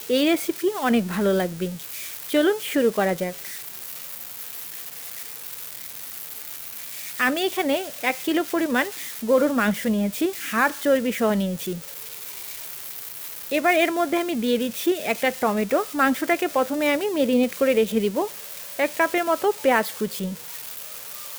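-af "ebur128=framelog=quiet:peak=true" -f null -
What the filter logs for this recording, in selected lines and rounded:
Integrated loudness:
  I:         -24.1 LUFS
  Threshold: -34.1 LUFS
Loudness range:
  LRA:         6.4 LU
  Threshold: -44.1 LUFS
  LRA low:   -28.6 LUFS
  LRA high:  -22.2 LUFS
True peak:
  Peak:       -6.1 dBFS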